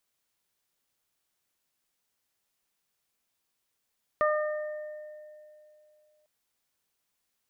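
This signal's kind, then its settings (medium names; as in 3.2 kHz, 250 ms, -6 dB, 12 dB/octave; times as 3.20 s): additive tone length 2.05 s, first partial 607 Hz, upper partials -1/-8 dB, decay 2.80 s, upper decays 0.95/1.91 s, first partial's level -23 dB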